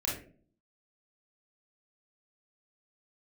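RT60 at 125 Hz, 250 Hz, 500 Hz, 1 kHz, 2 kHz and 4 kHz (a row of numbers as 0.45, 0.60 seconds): 0.70, 0.70, 0.55, 0.35, 0.35, 0.25 seconds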